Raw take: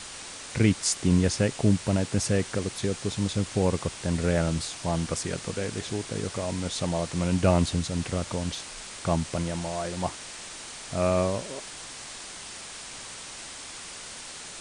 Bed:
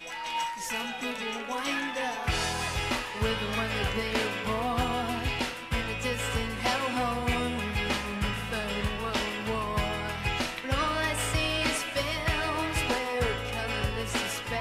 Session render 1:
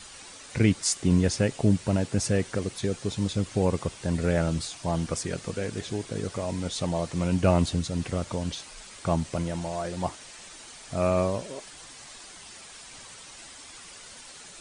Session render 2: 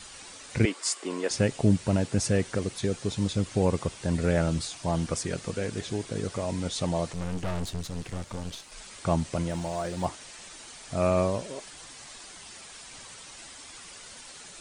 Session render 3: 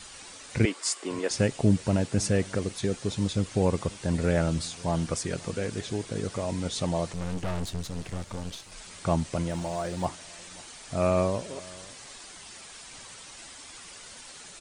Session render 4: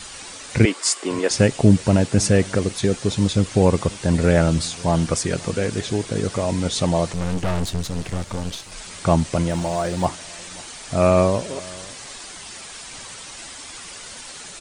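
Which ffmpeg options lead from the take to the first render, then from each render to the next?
ffmpeg -i in.wav -af "afftdn=noise_reduction=8:noise_floor=-41" out.wav
ffmpeg -i in.wav -filter_complex "[0:a]asettb=1/sr,asplit=3[link_01][link_02][link_03];[link_01]atrim=end=0.654[link_04];[link_02]atrim=start=0.65:end=1.31,asetpts=PTS-STARTPTS,afade=type=in:duration=0.004:curve=qsin,afade=type=out:start_time=0.656:duration=0.004:curve=qsin,highpass=frequency=340:width=0.5412,highpass=frequency=340:width=1.3066,equalizer=frequency=1100:width_type=q:width=4:gain=6,equalizer=frequency=3800:width_type=q:width=4:gain=-3,equalizer=frequency=6100:width_type=q:width=4:gain=-6,lowpass=frequency=9400:width=0.5412,lowpass=frequency=9400:width=1.3066[link_05];[link_03]atrim=start=1.306[link_06];[link_04][link_05]acrossfade=duration=0.004:curve1=hsin:curve2=qsin[link_07];[link_07][link_06]acrossfade=duration=0.004:curve1=qsin:curve2=hsin,asettb=1/sr,asplit=3[link_08][link_09][link_10];[link_08]atrim=end=7.134[link_11];[link_09]atrim=start=7.13:end=8.72,asetpts=PTS-STARTPTS,afade=type=in:duration=0.004:curve=qsin,afade=type=out:start_time=1.586:duration=0.004:curve=qsin,aeval=exprs='(tanh(28.2*val(0)+0.8)-tanh(0.8))/28.2':channel_layout=same[link_12];[link_10]atrim=start=8.716[link_13];[link_11][link_12]acrossfade=duration=0.004:curve1=hsin:curve2=qsin[link_14];[link_14][link_13]acrossfade=duration=0.004:curve1=qsin:curve2=hsin,asettb=1/sr,asplit=3[link_15][link_16][link_17];[link_15]atrim=end=9.504[link_18];[link_16]atrim=start=9.5:end=10.06,asetpts=PTS-STARTPTS,afade=type=in:duration=0.004:curve=qsin,afade=type=out:start_time=0.556:duration=0.004:curve=qsin,acrusher=bits=9:mode=log:mix=0:aa=0.000001[link_19];[link_17]atrim=start=10.056[link_20];[link_18][link_19]acrossfade=duration=0.004:curve1=hsin:curve2=qsin[link_21];[link_21][link_20]acrossfade=duration=0.004:curve1=qsin:curve2=hsin" out.wav
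ffmpeg -i in.wav -af "aecho=1:1:538:0.075" out.wav
ffmpeg -i in.wav -af "volume=8.5dB,alimiter=limit=-2dB:level=0:latency=1" out.wav

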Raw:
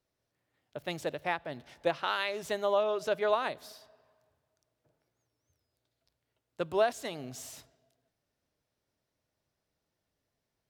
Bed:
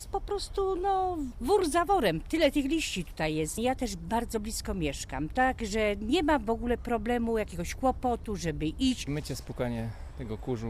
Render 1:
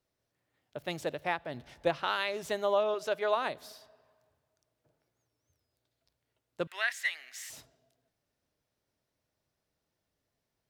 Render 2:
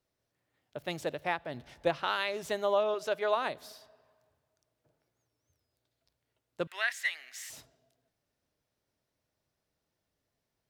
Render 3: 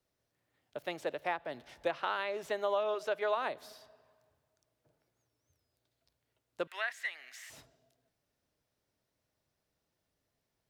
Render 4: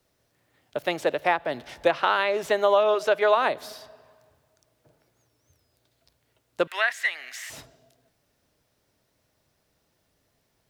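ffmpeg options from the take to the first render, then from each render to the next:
ffmpeg -i in.wav -filter_complex "[0:a]asettb=1/sr,asplit=3[link_01][link_02][link_03];[link_01]atrim=end=1.544[link_04];[link_02]atrim=start=1.54:end=2.37,asetpts=PTS-STARTPTS,afade=type=in:duration=0.004:curve=qsin,afade=type=out:start_time=0.826:duration=0.004:curve=qsin,lowshelf=frequency=97:gain=11.5[link_05];[link_03]atrim=start=2.366[link_06];[link_04][link_05]acrossfade=duration=0.004:curve1=hsin:curve2=qsin[link_07];[link_07][link_06]acrossfade=duration=0.004:curve1=qsin:curve2=hsin,asettb=1/sr,asplit=3[link_08][link_09][link_10];[link_08]atrim=end=2.944[link_11];[link_09]atrim=start=2.94:end=3.37,asetpts=PTS-STARTPTS,afade=type=in:duration=0.004:curve=qsin,afade=type=out:start_time=0.426:duration=0.004:curve=qsin,lowshelf=frequency=220:gain=-11.5[link_12];[link_10]atrim=start=3.366[link_13];[link_11][link_12]acrossfade=duration=0.004:curve1=hsin:curve2=qsin[link_14];[link_14][link_13]acrossfade=duration=0.004:curve1=qsin:curve2=hsin,asettb=1/sr,asplit=3[link_15][link_16][link_17];[link_15]atrim=end=6.674[link_18];[link_16]atrim=start=6.67:end=7.5,asetpts=PTS-STARTPTS,afade=type=in:duration=0.004:curve=qsin,afade=type=out:start_time=0.826:duration=0.004:curve=qsin,highpass=frequency=1900:width_type=q:width=7.1[link_19];[link_17]atrim=start=7.496[link_20];[link_18][link_19]acrossfade=duration=0.004:curve1=hsin:curve2=qsin[link_21];[link_21][link_20]acrossfade=duration=0.004:curve1=qsin:curve2=hsin" out.wav
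ffmpeg -i in.wav -af anull out.wav
ffmpeg -i in.wav -filter_complex "[0:a]acrossover=split=290|1200|3000[link_01][link_02][link_03][link_04];[link_01]acompressor=threshold=-60dB:ratio=4[link_05];[link_02]acompressor=threshold=-30dB:ratio=4[link_06];[link_03]acompressor=threshold=-38dB:ratio=4[link_07];[link_04]acompressor=threshold=-54dB:ratio=4[link_08];[link_05][link_06][link_07][link_08]amix=inputs=4:normalize=0" out.wav
ffmpeg -i in.wav -af "volume=12dB" out.wav

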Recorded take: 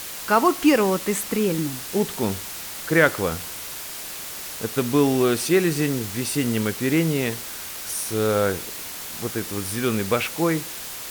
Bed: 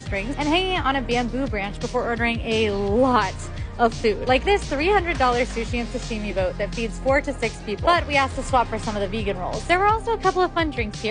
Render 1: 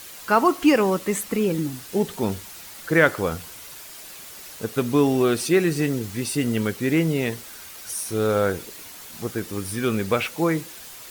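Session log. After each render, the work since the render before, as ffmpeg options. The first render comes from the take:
ffmpeg -i in.wav -af "afftdn=noise_reduction=8:noise_floor=-35" out.wav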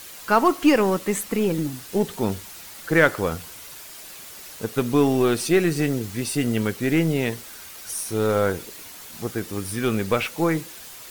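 ffmpeg -i in.wav -af "aeval=exprs='0.631*(cos(1*acos(clip(val(0)/0.631,-1,1)))-cos(1*PI/2))+0.0158*(cos(8*acos(clip(val(0)/0.631,-1,1)))-cos(8*PI/2))':channel_layout=same" out.wav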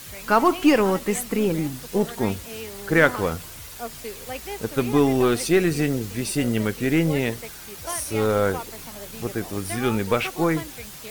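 ffmpeg -i in.wav -i bed.wav -filter_complex "[1:a]volume=-15.5dB[link_01];[0:a][link_01]amix=inputs=2:normalize=0" out.wav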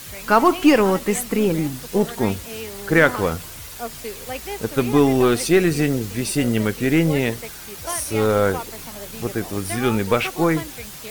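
ffmpeg -i in.wav -af "volume=3dB,alimiter=limit=-3dB:level=0:latency=1" out.wav

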